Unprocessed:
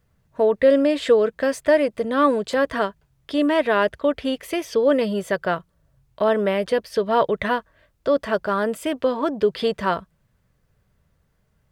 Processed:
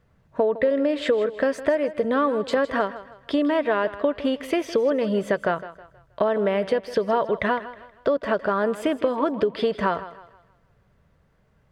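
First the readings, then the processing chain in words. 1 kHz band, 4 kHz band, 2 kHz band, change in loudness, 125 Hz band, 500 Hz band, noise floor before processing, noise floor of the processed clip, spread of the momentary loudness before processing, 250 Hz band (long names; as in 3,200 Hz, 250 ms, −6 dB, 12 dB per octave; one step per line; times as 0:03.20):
−2.0 dB, −4.0 dB, −2.5 dB, −2.5 dB, −1.0 dB, −2.5 dB, −66 dBFS, −62 dBFS, 8 LU, −2.0 dB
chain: low-pass filter 2,000 Hz 6 dB per octave
low-shelf EQ 170 Hz −6 dB
downward compressor 6 to 1, threshold −26 dBFS, peak gain reduction 13.5 dB
feedback echo with a high-pass in the loop 159 ms, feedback 37%, high-pass 180 Hz, level −14.5 dB
level +7 dB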